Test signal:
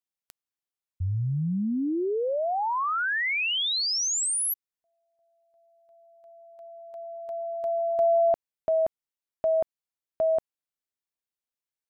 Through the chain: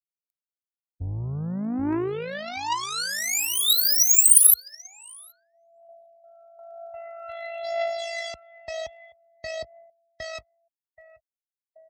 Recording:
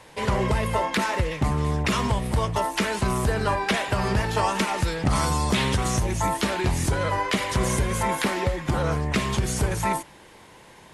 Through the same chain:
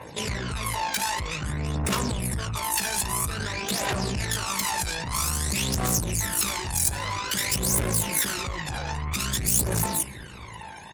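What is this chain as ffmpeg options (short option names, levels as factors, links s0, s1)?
-filter_complex "[0:a]acompressor=threshold=0.0631:ratio=10:attack=4.1:release=38:knee=6:detection=rms,aeval=exprs='(tanh(70.8*val(0)+0.5)-tanh(0.5))/70.8':c=same,highpass=f=55:w=0.5412,highpass=f=55:w=1.3066,tremolo=f=54:d=0.462,bandreject=f=3200:w=24,asplit=2[s0][s1];[s1]adelay=779,lowpass=f=2000:p=1,volume=0.2,asplit=2[s2][s3];[s3]adelay=779,lowpass=f=2000:p=1,volume=0.34,asplit=2[s4][s5];[s5]adelay=779,lowpass=f=2000:p=1,volume=0.34[s6];[s0][s2][s4][s6]amix=inputs=4:normalize=0,afftdn=nr=34:nf=-60,crystalizer=i=3:c=0,aphaser=in_gain=1:out_gain=1:delay=1.3:decay=0.63:speed=0.51:type=triangular,highshelf=f=7300:g=3.5,volume=2.24"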